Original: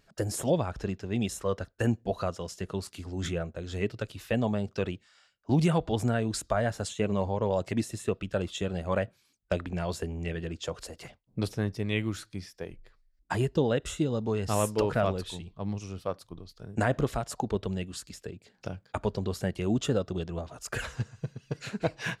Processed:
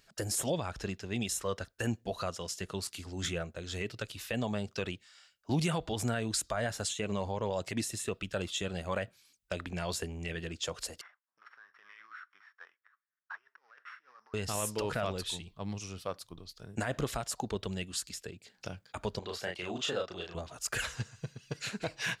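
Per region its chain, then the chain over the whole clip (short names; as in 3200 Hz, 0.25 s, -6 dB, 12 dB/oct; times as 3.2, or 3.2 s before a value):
11.01–14.34 sample sorter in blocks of 8 samples + negative-ratio compressor -32 dBFS, ratio -0.5 + Butterworth band-pass 1400 Hz, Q 2.1
19.19–20.35 three-band isolator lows -14 dB, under 400 Hz, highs -14 dB, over 4800 Hz + doubler 34 ms -3 dB
whole clip: tilt shelf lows -5.5 dB, about 1400 Hz; limiter -22 dBFS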